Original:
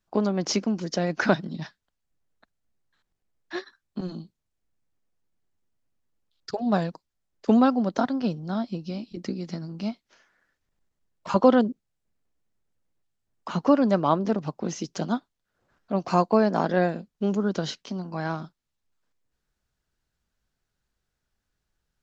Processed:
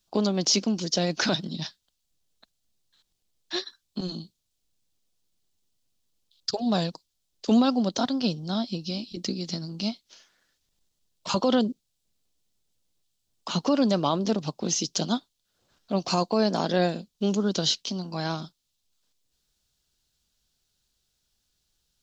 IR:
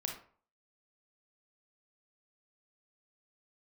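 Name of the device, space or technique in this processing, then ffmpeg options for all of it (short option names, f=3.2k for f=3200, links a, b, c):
over-bright horn tweeter: -af "highshelf=f=2.6k:t=q:w=1.5:g=10.5,alimiter=limit=-12.5dB:level=0:latency=1:release=19"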